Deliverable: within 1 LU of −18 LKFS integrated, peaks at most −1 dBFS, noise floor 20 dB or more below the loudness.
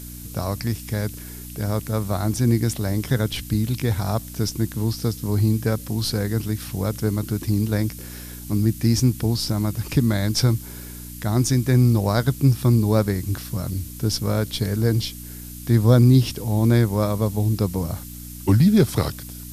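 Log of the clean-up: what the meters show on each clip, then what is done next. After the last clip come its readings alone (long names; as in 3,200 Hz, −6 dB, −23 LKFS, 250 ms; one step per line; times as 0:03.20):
mains hum 60 Hz; hum harmonics up to 300 Hz; level of the hum −37 dBFS; background noise floor −37 dBFS; target noise floor −42 dBFS; integrated loudness −22.0 LKFS; sample peak −5.5 dBFS; target loudness −18.0 LKFS
→ hum removal 60 Hz, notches 5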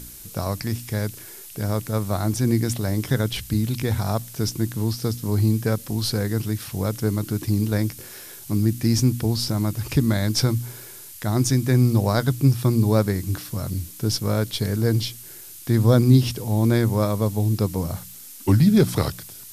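mains hum none found; background noise floor −41 dBFS; target noise floor −43 dBFS
→ noise reduction from a noise print 6 dB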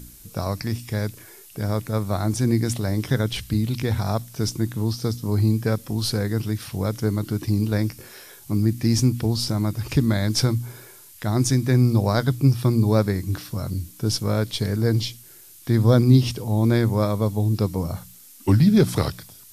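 background noise floor −47 dBFS; integrated loudness −22.5 LKFS; sample peak −4.5 dBFS; target loudness −18.0 LKFS
→ level +4.5 dB
brickwall limiter −1 dBFS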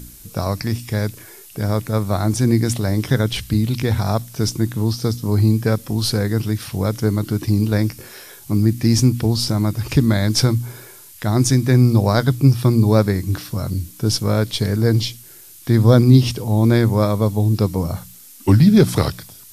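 integrated loudness −18.0 LKFS; sample peak −1.0 dBFS; background noise floor −42 dBFS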